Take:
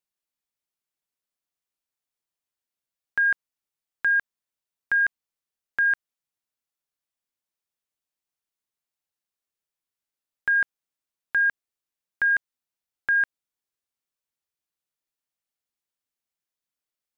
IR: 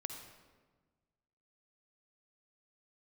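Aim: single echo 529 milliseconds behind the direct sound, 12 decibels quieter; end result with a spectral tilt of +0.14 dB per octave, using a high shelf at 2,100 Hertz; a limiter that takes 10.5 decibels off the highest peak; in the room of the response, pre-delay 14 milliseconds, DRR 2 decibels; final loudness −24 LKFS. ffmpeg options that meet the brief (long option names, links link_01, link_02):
-filter_complex "[0:a]highshelf=frequency=2100:gain=-6.5,alimiter=level_in=5.5dB:limit=-24dB:level=0:latency=1,volume=-5.5dB,aecho=1:1:529:0.251,asplit=2[link_01][link_02];[1:a]atrim=start_sample=2205,adelay=14[link_03];[link_02][link_03]afir=irnorm=-1:irlink=0,volume=-0.5dB[link_04];[link_01][link_04]amix=inputs=2:normalize=0,volume=13.5dB"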